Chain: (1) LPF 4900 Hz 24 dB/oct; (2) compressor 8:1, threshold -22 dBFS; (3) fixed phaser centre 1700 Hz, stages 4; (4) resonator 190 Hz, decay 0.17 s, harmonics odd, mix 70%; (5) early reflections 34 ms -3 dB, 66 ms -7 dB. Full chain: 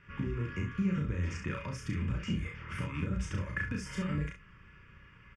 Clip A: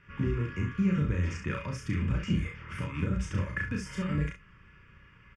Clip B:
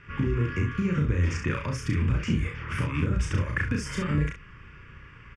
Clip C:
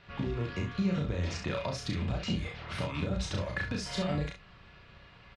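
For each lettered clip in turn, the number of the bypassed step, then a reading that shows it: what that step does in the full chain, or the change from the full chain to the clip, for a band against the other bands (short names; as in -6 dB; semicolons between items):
2, mean gain reduction 2.0 dB; 4, 250 Hz band -2.0 dB; 3, 4 kHz band +6.5 dB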